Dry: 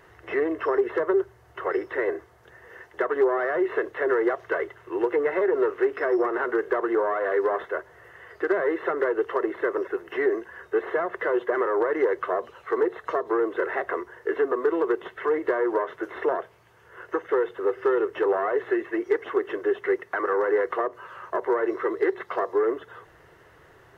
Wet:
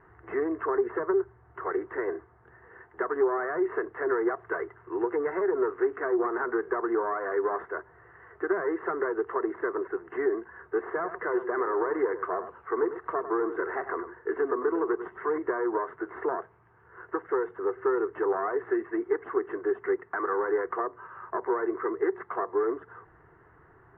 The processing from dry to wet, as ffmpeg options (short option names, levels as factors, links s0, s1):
-filter_complex "[0:a]asettb=1/sr,asplit=3[s0][s1][s2];[s0]atrim=end=10.874[s3];[s1]atrim=start=10.87:end=15.38,asetpts=PTS-STARTPTS,afade=t=in:d=0.004:c=qsin,afade=t=out:st=4.506:d=0.004:c=qsin,aecho=1:1:100:0.282,atrim=end_sample=198891[s4];[s2]atrim=start=15.376[s5];[s3][s4]acrossfade=d=0.004:c1=hsin:c2=qsin[s6];[s6][s5]acrossfade=d=0.004:c1=qsin:c2=hsin,lowpass=f=1600:w=0.5412,lowpass=f=1600:w=1.3066,equalizer=f=560:w=3.2:g=-11.5,volume=0.891"